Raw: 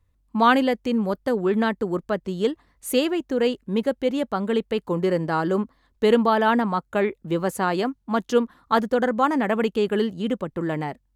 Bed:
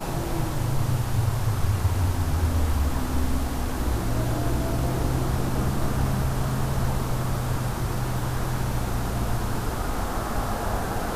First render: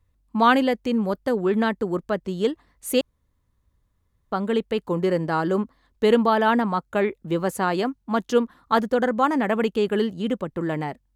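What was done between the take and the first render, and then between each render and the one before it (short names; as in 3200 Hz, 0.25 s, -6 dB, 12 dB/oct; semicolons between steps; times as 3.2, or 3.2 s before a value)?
3.01–4.32 room tone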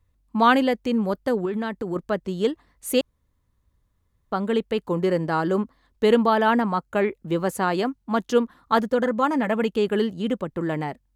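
1.45–1.96 compressor, threshold -23 dBFS; 6.47–7.27 notch 3600 Hz; 8.9–9.69 notch comb 380 Hz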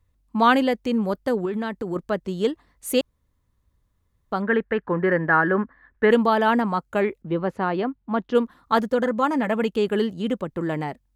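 4.42–6.11 synth low-pass 1700 Hz, resonance Q 6.8; 7.22–8.35 air absorption 320 m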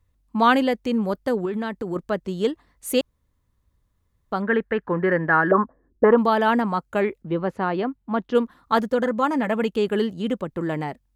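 5.51–6.18 envelope low-pass 270–1100 Hz up, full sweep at -18.5 dBFS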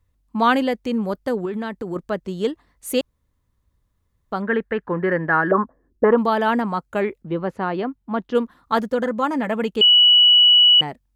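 9.81–10.81 bleep 2940 Hz -9 dBFS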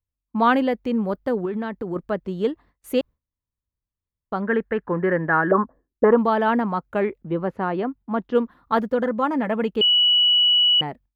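bell 8000 Hz -13.5 dB 1.9 oct; gate with hold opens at -49 dBFS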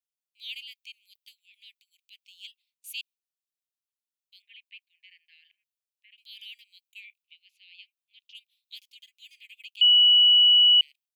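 steep high-pass 2400 Hz 96 dB/oct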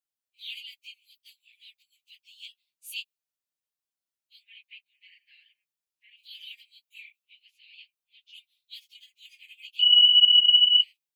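phase scrambler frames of 50 ms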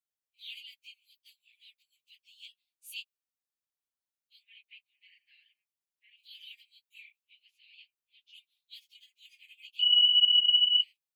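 gain -5.5 dB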